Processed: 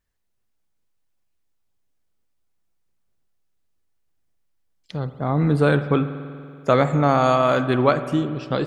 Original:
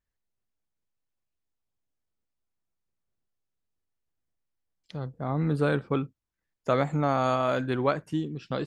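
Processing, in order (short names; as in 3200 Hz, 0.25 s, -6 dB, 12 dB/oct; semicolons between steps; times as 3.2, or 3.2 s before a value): spring tank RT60 2.4 s, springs 48 ms, chirp 45 ms, DRR 11.5 dB; gain +7.5 dB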